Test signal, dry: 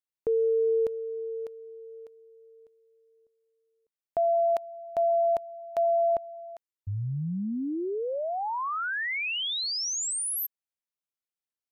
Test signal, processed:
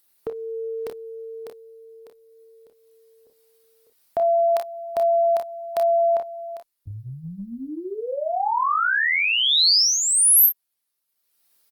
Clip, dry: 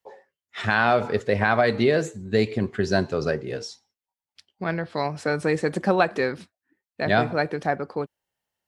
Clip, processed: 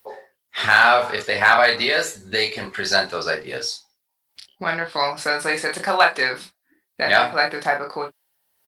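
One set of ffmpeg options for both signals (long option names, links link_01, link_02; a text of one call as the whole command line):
ffmpeg -i in.wav -filter_complex "[0:a]aecho=1:1:30|46|56:0.631|0.211|0.266,acrossover=split=720[link_01][link_02];[link_01]acompressor=threshold=-36dB:ratio=10:attack=9:release=457:knee=6:detection=rms[link_03];[link_02]aexciter=amount=1.2:drive=7:freq=3900[link_04];[link_03][link_04]amix=inputs=2:normalize=0,lowshelf=frequency=180:gain=-6,acompressor=mode=upward:threshold=-52dB:ratio=2.5:attack=0.22:release=563:knee=2.83:detection=peak,asoftclip=type=hard:threshold=-12dB,volume=8dB" -ar 48000 -c:a libopus -b:a 24k out.opus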